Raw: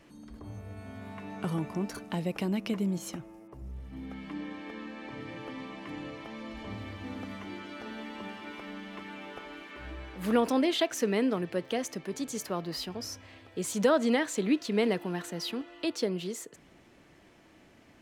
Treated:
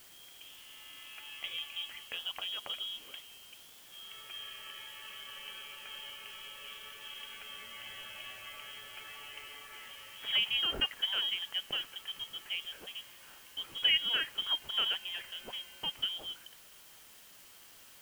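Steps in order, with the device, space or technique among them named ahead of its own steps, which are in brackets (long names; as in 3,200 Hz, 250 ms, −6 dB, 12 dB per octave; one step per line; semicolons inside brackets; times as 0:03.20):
scrambled radio voice (band-pass filter 330–3,100 Hz; voice inversion scrambler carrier 3,500 Hz; white noise bed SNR 17 dB)
level −3 dB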